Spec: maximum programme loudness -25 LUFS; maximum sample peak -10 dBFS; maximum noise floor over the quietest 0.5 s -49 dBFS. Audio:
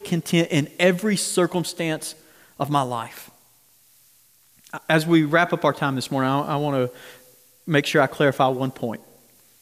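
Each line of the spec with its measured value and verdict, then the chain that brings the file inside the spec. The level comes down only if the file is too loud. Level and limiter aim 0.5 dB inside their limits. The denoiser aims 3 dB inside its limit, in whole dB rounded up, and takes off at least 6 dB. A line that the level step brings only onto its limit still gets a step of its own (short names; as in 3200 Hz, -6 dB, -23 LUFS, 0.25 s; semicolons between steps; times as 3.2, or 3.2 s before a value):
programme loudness -22.0 LUFS: fail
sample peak -5.5 dBFS: fail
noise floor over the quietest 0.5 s -57 dBFS: OK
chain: gain -3.5 dB; limiter -10.5 dBFS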